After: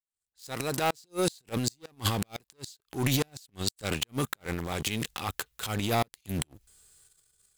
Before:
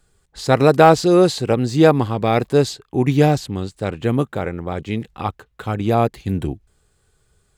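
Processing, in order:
fade in at the beginning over 2.17 s
leveller curve on the samples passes 2
transient designer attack −9 dB, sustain +10 dB
first-order pre-emphasis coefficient 0.9
gate with flip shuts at −16 dBFS, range −38 dB
level +4 dB

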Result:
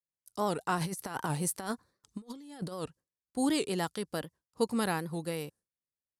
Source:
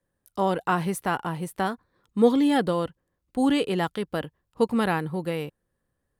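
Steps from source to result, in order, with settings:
high-pass filter 62 Hz
flat-topped bell 7,100 Hz +12.5 dB
0:00.77–0:02.84: compressor whose output falls as the input rises −29 dBFS, ratio −0.5
noise gate with hold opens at −48 dBFS
wow of a warped record 78 rpm, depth 160 cents
level −7 dB

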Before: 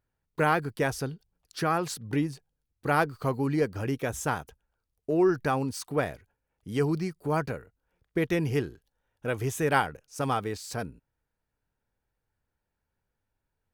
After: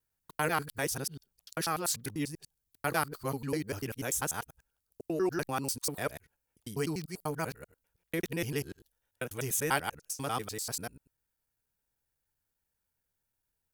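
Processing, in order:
reversed piece by piece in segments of 98 ms
first-order pre-emphasis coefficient 0.8
level +6.5 dB

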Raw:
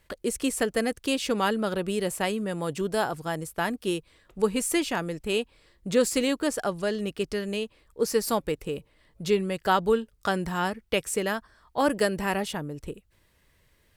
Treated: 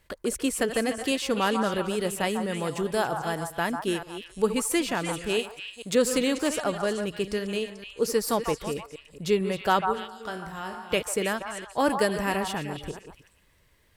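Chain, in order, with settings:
delay that plays each chunk backwards 224 ms, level −11.5 dB
0:05.39–0:05.95: spectral tilt +2 dB per octave
0:09.81–0:10.91: tuned comb filter 54 Hz, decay 0.66 s, harmonics all, mix 80%
echo through a band-pass that steps 146 ms, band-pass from 1,000 Hz, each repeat 1.4 octaves, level −3.5 dB

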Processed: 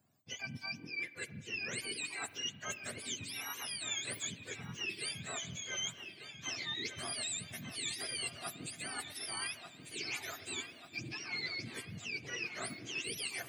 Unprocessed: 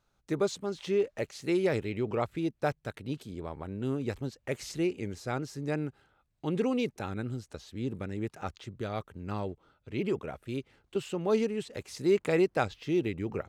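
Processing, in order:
frequency axis turned over on the octave scale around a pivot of 970 Hz
high-shelf EQ 5,900 Hz −10.5 dB
reversed playback
downward compressor 10 to 1, threshold −41 dBFS, peak gain reduction 15.5 dB
reversed playback
first-order pre-emphasis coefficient 0.8
on a send: delay with a low-pass on its return 1,191 ms, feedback 65%, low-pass 3,800 Hz, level −9 dB
on the sum: spring reverb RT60 1.9 s, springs 43 ms, chirp 25 ms, DRR 15 dB
level +12.5 dB

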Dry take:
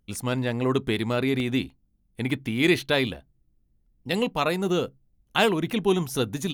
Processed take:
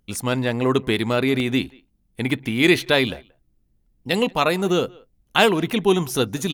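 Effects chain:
low-shelf EQ 210 Hz −4 dB
far-end echo of a speakerphone 180 ms, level −25 dB
level +5.5 dB

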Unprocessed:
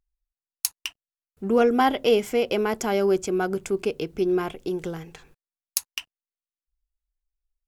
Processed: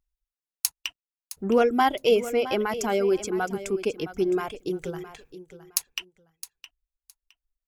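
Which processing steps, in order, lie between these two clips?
reverb reduction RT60 1.5 s
on a send: repeating echo 664 ms, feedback 20%, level −14 dB

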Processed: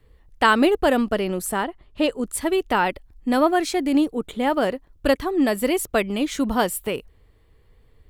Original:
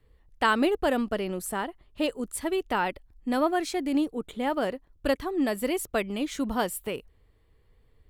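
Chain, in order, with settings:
0:01.63–0:02.29: high-shelf EQ 6,300 Hz → 11,000 Hz −9.5 dB
level +6.5 dB

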